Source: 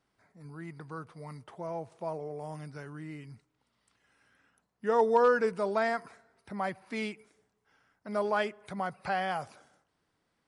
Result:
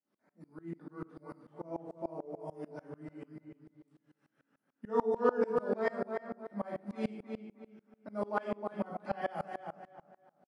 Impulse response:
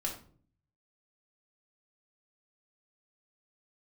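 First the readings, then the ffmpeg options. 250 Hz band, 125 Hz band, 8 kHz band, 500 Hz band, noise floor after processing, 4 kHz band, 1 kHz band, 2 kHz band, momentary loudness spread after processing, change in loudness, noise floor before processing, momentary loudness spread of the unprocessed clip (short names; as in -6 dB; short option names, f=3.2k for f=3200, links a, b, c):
-0.5 dB, -4.5 dB, n/a, -4.0 dB, -83 dBFS, under -10 dB, -7.0 dB, -9.0 dB, 20 LU, -5.5 dB, -79 dBFS, 20 LU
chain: -filter_complex "[0:a]highpass=f=190:w=0.5412,highpass=f=190:w=1.3066,tiltshelf=f=820:g=6,asplit=2[a][b];[b]adelay=315,lowpass=f=2.8k:p=1,volume=-5dB,asplit=2[c][d];[d]adelay=315,lowpass=f=2.8k:p=1,volume=0.31,asplit=2[e][f];[f]adelay=315,lowpass=f=2.8k:p=1,volume=0.31,asplit=2[g][h];[h]adelay=315,lowpass=f=2.8k:p=1,volume=0.31[i];[a][c][e][g][i]amix=inputs=5:normalize=0[j];[1:a]atrim=start_sample=2205[k];[j][k]afir=irnorm=-1:irlink=0,aeval=exprs='val(0)*pow(10,-27*if(lt(mod(-6.8*n/s,1),2*abs(-6.8)/1000),1-mod(-6.8*n/s,1)/(2*abs(-6.8)/1000),(mod(-6.8*n/s,1)-2*abs(-6.8)/1000)/(1-2*abs(-6.8)/1000))/20)':c=same,volume=-1.5dB"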